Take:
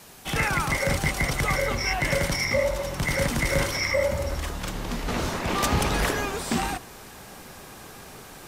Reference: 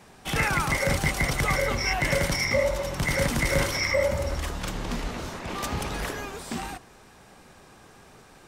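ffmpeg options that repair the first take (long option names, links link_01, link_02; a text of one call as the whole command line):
ffmpeg -i in.wav -af "afwtdn=0.0035,asetnsamples=nb_out_samples=441:pad=0,asendcmd='5.08 volume volume -7dB',volume=0dB" out.wav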